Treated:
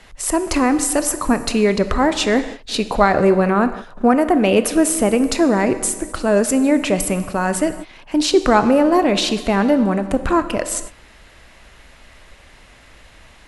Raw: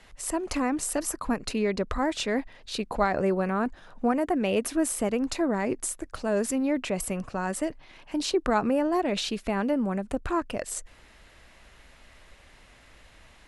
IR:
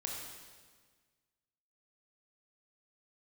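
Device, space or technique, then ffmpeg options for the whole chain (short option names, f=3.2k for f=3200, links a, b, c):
keyed gated reverb: -filter_complex "[0:a]asplit=3[a][b][c];[1:a]atrim=start_sample=2205[d];[b][d]afir=irnorm=-1:irlink=0[e];[c]apad=whole_len=594314[f];[e][f]sidechaingate=range=-33dB:threshold=-42dB:ratio=16:detection=peak,volume=-6.5dB[g];[a][g]amix=inputs=2:normalize=0,volume=8dB"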